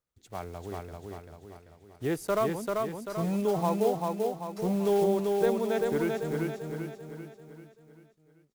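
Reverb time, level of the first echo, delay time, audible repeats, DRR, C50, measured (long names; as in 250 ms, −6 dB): no reverb audible, −3.0 dB, 390 ms, 6, no reverb audible, no reverb audible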